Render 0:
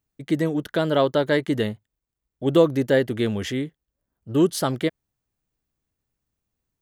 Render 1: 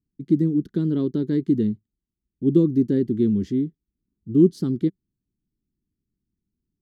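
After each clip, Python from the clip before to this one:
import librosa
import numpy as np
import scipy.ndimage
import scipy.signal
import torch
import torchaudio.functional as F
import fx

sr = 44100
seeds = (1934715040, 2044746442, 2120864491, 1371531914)

y = fx.curve_eq(x, sr, hz=(130.0, 190.0, 380.0, 610.0, 1100.0, 2900.0, 4500.0, 9700.0), db=(0, 8, 2, -28, -21, -22, -12, -21))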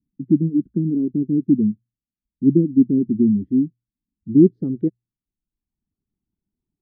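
y = fx.dereverb_blind(x, sr, rt60_s=0.87)
y = fx.filter_sweep_lowpass(y, sr, from_hz=260.0, to_hz=860.0, start_s=4.38, end_s=4.95, q=2.2)
y = fx.hum_notches(y, sr, base_hz=60, count=2)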